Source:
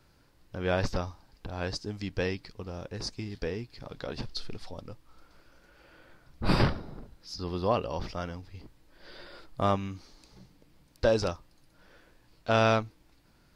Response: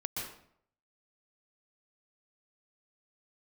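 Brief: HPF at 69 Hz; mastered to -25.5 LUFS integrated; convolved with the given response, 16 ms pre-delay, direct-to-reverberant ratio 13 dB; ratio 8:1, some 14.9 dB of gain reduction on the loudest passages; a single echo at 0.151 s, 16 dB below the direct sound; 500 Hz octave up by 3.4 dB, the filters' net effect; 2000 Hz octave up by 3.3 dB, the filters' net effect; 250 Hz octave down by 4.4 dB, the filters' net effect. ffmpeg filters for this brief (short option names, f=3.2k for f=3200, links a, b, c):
-filter_complex "[0:a]highpass=69,equalizer=f=250:t=o:g=-8,equalizer=f=500:t=o:g=5.5,equalizer=f=2k:t=o:g=4.5,acompressor=threshold=-32dB:ratio=8,aecho=1:1:151:0.158,asplit=2[a][b];[1:a]atrim=start_sample=2205,adelay=16[c];[b][c]afir=irnorm=-1:irlink=0,volume=-15.5dB[d];[a][d]amix=inputs=2:normalize=0,volume=14dB"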